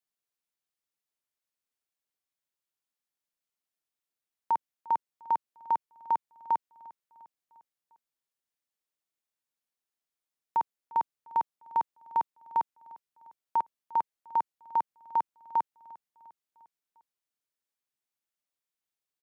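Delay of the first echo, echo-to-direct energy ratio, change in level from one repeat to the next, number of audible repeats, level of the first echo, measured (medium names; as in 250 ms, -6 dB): 351 ms, -20.5 dB, -5.0 dB, 3, -22.0 dB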